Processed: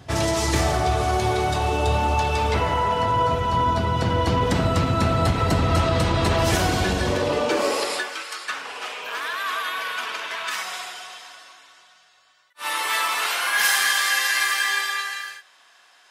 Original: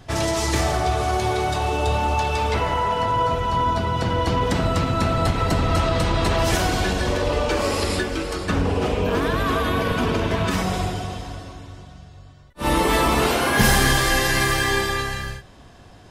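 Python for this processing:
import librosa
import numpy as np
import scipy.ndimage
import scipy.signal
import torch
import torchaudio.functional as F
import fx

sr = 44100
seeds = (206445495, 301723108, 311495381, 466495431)

y = fx.filter_sweep_highpass(x, sr, from_hz=70.0, to_hz=1400.0, start_s=6.99, end_s=8.26, q=1.0)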